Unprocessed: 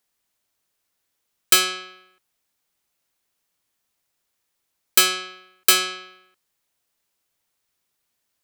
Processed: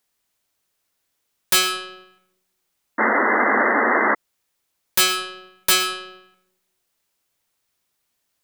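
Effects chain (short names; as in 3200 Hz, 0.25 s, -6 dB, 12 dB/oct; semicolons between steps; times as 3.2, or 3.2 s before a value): wavefolder -11.5 dBFS; digital reverb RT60 0.96 s, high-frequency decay 0.35×, pre-delay 65 ms, DRR 12.5 dB; painted sound noise, 2.98–4.15, 210–2100 Hz -20 dBFS; gain +2 dB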